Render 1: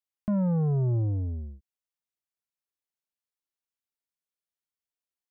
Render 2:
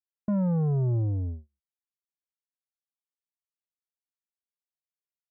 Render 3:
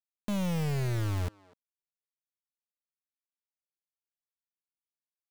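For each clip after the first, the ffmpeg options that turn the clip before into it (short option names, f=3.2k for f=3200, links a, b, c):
-af "agate=range=-40dB:threshold=-33dB:ratio=16:detection=peak"
-filter_complex "[0:a]acrusher=bits=4:mix=0:aa=0.000001,aeval=exprs='(tanh(22.4*val(0)+0.45)-tanh(0.45))/22.4':c=same,asplit=2[a][b];[b]adelay=250,highpass=300,lowpass=3.4k,asoftclip=type=hard:threshold=-33.5dB,volume=-17dB[c];[a][c]amix=inputs=2:normalize=0,volume=-1dB"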